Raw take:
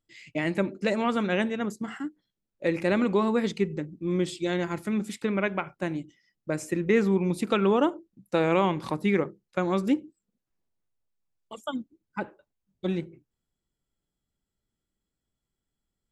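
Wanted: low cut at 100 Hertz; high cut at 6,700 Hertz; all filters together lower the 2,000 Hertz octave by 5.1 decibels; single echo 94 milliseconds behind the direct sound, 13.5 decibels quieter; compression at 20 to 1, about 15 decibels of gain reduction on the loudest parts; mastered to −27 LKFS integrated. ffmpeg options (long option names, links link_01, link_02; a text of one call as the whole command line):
ffmpeg -i in.wav -af "highpass=100,lowpass=6700,equalizer=frequency=2000:width_type=o:gain=-6.5,acompressor=threshold=-33dB:ratio=20,aecho=1:1:94:0.211,volume=12.5dB" out.wav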